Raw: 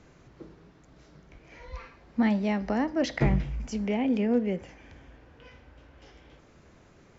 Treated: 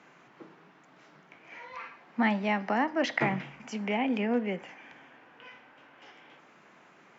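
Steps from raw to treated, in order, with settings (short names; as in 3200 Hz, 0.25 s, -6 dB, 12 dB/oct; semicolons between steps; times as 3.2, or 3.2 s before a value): HPF 170 Hz 24 dB/oct; band shelf 1500 Hz +9 dB 2.4 oct; gain -3.5 dB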